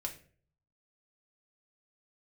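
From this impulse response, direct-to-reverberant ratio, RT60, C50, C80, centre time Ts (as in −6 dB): 0.0 dB, 0.45 s, 12.0 dB, 16.5 dB, 11 ms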